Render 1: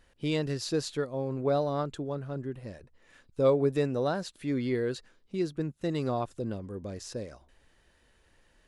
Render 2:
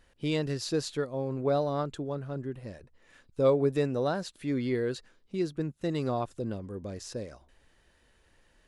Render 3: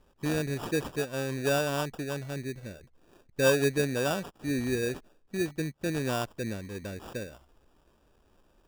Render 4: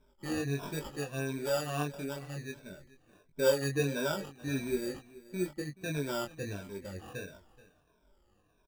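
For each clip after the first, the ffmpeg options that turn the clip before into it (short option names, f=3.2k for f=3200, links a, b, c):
-af anull
-af "acrusher=samples=21:mix=1:aa=0.000001"
-af "afftfilt=real='re*pow(10,16/40*sin(2*PI*(1.6*log(max(b,1)*sr/1024/100)/log(2)-(-1.5)*(pts-256)/sr)))':imag='im*pow(10,16/40*sin(2*PI*(1.6*log(max(b,1)*sr/1024/100)/log(2)-(-1.5)*(pts-256)/sr)))':win_size=1024:overlap=0.75,flanger=delay=19.5:depth=2.8:speed=1.2,aecho=1:1:429:0.106,volume=-4dB"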